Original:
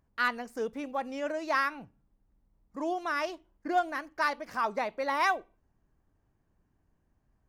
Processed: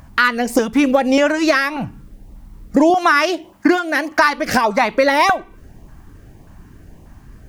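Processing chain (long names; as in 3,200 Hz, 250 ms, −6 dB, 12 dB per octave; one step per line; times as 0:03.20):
0:02.90–0:04.19: Bessel high-pass filter 200 Hz, order 2
downward compressor 16 to 1, threshold −39 dBFS, peak gain reduction 18 dB
auto-filter notch saw up 1.7 Hz 360–1,700 Hz
boost into a limiter +32 dB
level −1 dB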